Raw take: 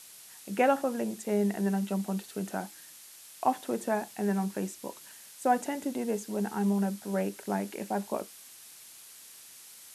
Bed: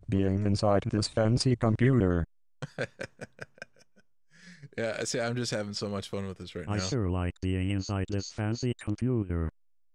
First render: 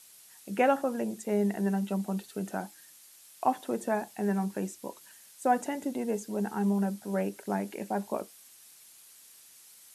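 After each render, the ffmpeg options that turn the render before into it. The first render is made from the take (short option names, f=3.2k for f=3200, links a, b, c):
-af "afftdn=nr=6:nf=-51"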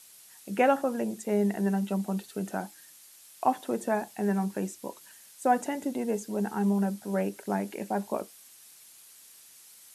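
-af "volume=1.5dB"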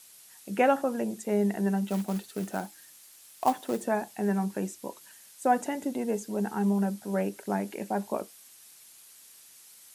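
-filter_complex "[0:a]asettb=1/sr,asplit=3[a][b][c];[a]atrim=end=1.874[d];[b]atrim=start=1.87:end=3.84,asetpts=PTS-STARTPTS,afade=t=in:d=0.004:c=qsin,afade=t=out:st=1.966:d=0.004:c=qsin,acrusher=bits=4:mode=log:mix=0:aa=0.000001[e];[c]atrim=start=3.836[f];[d][e]acrossfade=d=0.004:c1=hsin:c2=qsin[g];[g][f]acrossfade=d=0.004:c1=qsin:c2=hsin"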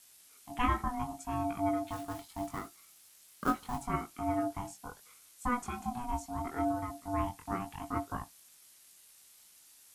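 -af "flanger=delay=18:depth=5.7:speed=0.73,aeval=exprs='val(0)*sin(2*PI*490*n/s)':c=same"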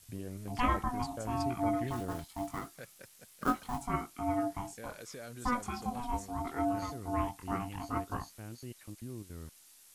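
-filter_complex "[1:a]volume=-15.5dB[a];[0:a][a]amix=inputs=2:normalize=0"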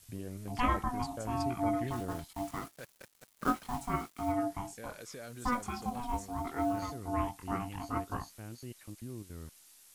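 -filter_complex "[0:a]asettb=1/sr,asplit=3[a][b][c];[a]atrim=end=2.334[d];[b]atrim=start=2.33:end=4.32,asetpts=PTS-STARTPTS,afade=t=in:d=0.004:c=qsin,afade=t=out:st=1.986:d=0.004:c=qsin,acrusher=bits=7:mix=0:aa=0.5[e];[c]atrim=start=4.316[f];[d][e]acrossfade=d=0.004:c1=hsin:c2=qsin[g];[g][f]acrossfade=d=0.004:c1=qsin:c2=hsin,asettb=1/sr,asplit=3[h][i][j];[h]atrim=end=5.244[k];[i]atrim=start=5.24:end=6.91,asetpts=PTS-STARTPTS,afade=t=in:d=0.004:c=qsin,afade=t=out:st=1.666:d=0.004:c=qsin,acrusher=bits=7:mode=log:mix=0:aa=0.000001[l];[j]atrim=start=6.906[m];[k][l]acrossfade=d=0.004:c1=hsin:c2=qsin[n];[n][m]acrossfade=d=0.004:c1=qsin:c2=hsin"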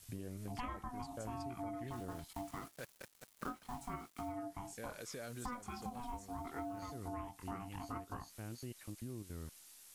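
-af "acompressor=threshold=-41dB:ratio=6"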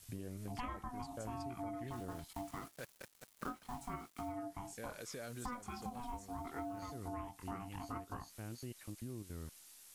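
-af anull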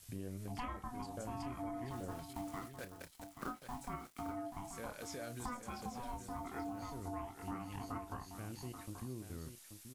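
-filter_complex "[0:a]asplit=2[a][b];[b]adelay=31,volume=-12.5dB[c];[a][c]amix=inputs=2:normalize=0,aecho=1:1:832:0.355"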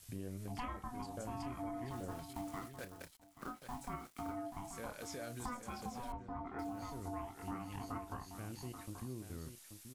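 -filter_complex "[0:a]asettb=1/sr,asplit=3[a][b][c];[a]atrim=end=6.124[d];[b]atrim=start=6.12:end=6.59,asetpts=PTS-STARTPTS,afade=t=in:d=0.004:c=qsin,afade=t=out:st=0.466:d=0.004:c=qsin,lowpass=1.8k[e];[c]atrim=start=6.586[f];[d][e]acrossfade=d=0.004:c1=hsin:c2=qsin[g];[g][f]acrossfade=d=0.004:c1=qsin:c2=hsin,asplit=2[h][i];[h]atrim=end=3.17,asetpts=PTS-STARTPTS,afade=t=out:st=3.166:d=0.004:c=hsin:silence=0.0891251[j];[i]atrim=start=3.17,asetpts=PTS-STARTPTS,afade=t=in:d=0.45:silence=0.0891251[k];[j][k]concat=n=2:v=0:a=1"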